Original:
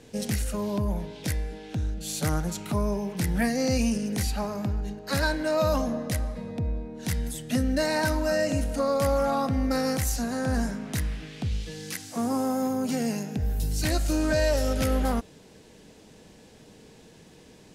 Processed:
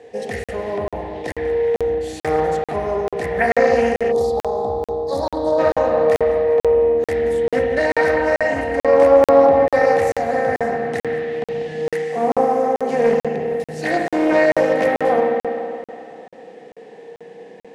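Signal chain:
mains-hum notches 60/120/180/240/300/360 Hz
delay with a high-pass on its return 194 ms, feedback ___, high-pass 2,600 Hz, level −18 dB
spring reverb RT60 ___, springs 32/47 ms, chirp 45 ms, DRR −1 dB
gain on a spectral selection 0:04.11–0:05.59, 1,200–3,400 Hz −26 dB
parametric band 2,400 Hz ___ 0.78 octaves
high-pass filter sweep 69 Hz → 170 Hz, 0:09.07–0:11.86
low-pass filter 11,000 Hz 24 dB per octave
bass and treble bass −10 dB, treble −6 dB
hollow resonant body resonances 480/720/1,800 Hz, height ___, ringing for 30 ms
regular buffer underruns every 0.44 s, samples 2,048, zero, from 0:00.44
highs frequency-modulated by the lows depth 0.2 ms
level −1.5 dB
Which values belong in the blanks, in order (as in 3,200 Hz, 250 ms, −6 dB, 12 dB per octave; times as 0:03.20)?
47%, 2.7 s, +2 dB, 17 dB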